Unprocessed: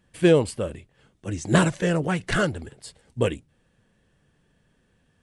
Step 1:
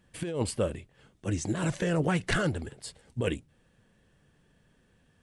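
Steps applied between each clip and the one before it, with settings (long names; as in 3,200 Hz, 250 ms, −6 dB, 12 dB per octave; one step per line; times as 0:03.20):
compressor whose output falls as the input rises −24 dBFS, ratio −1
level −3.5 dB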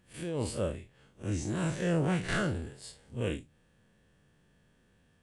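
spectrum smeared in time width 90 ms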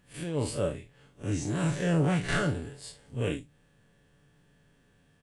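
comb filter 7 ms, depth 42%
level +2 dB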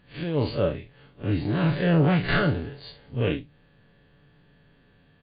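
linear-phase brick-wall low-pass 4,800 Hz
level +5.5 dB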